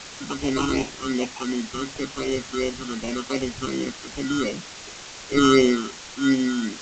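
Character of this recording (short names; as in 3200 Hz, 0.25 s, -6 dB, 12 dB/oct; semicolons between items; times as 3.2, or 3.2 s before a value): aliases and images of a low sample rate 1700 Hz, jitter 0%; phasing stages 8, 2.7 Hz, lowest notch 570–1400 Hz; a quantiser's noise floor 6-bit, dither triangular; G.722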